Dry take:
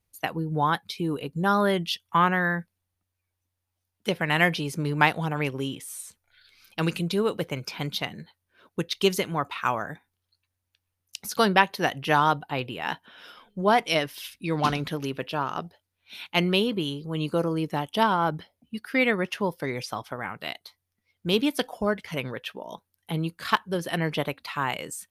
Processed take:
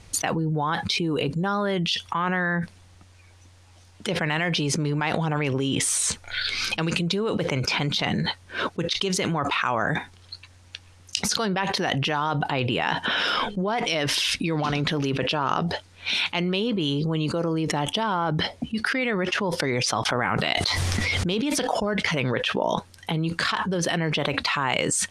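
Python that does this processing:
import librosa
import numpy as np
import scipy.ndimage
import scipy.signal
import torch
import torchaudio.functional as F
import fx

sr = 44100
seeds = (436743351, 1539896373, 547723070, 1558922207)

y = fx.env_flatten(x, sr, amount_pct=100, at=(20.05, 21.59))
y = scipy.signal.sosfilt(scipy.signal.butter(4, 8100.0, 'lowpass', fs=sr, output='sos'), y)
y = fx.env_flatten(y, sr, amount_pct=100)
y = F.gain(torch.from_numpy(y), -9.5).numpy()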